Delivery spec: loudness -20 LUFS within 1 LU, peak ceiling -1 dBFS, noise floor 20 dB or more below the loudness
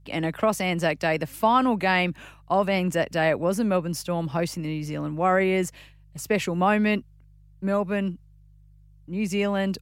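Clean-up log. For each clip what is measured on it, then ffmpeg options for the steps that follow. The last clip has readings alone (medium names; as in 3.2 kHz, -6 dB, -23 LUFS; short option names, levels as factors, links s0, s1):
hum 50 Hz; highest harmonic 150 Hz; hum level -48 dBFS; loudness -25.0 LUFS; peak level -8.0 dBFS; loudness target -20.0 LUFS
-> -af "bandreject=f=50:t=h:w=4,bandreject=f=100:t=h:w=4,bandreject=f=150:t=h:w=4"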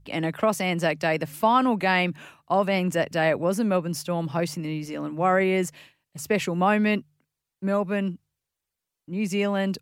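hum not found; loudness -25.0 LUFS; peak level -8.0 dBFS; loudness target -20.0 LUFS
-> -af "volume=1.78"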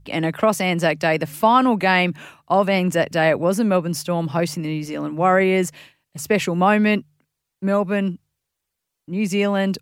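loudness -20.0 LUFS; peak level -3.0 dBFS; noise floor -81 dBFS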